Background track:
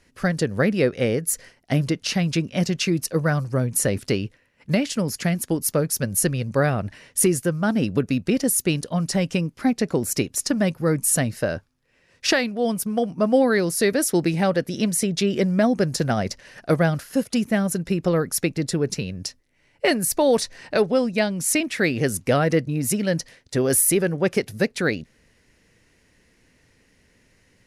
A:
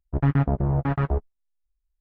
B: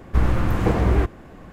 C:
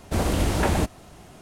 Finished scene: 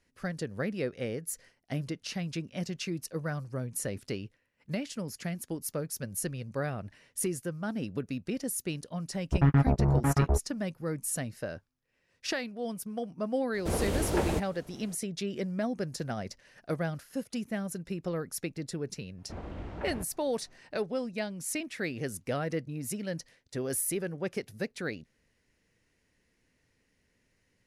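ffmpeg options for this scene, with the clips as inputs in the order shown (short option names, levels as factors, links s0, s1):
-filter_complex "[3:a]asplit=2[s0][s1];[0:a]volume=0.224[s2];[s0]equalizer=f=450:t=o:w=0.58:g=7[s3];[s1]lowpass=2200[s4];[1:a]atrim=end=2,asetpts=PTS-STARTPTS,volume=0.794,afade=t=in:d=0.004:c=hsin,afade=t=out:st=1.996:d=0.004:c=hsin,adelay=9190[s5];[s3]atrim=end=1.41,asetpts=PTS-STARTPTS,volume=0.376,afade=t=in:d=0.004:c=hsin,afade=t=out:st=1.406:d=0.004:c=hsin,adelay=13540[s6];[s4]atrim=end=1.41,asetpts=PTS-STARTPTS,volume=0.133,afade=t=in:d=0.004:c=hsin,afade=t=out:st=1.406:d=0.004:c=hsin,adelay=19180[s7];[s2][s5][s6][s7]amix=inputs=4:normalize=0"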